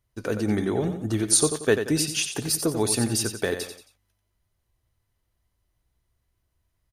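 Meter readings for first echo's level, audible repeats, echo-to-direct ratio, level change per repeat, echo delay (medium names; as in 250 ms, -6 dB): -8.5 dB, 3, -8.0 dB, -8.5 dB, 90 ms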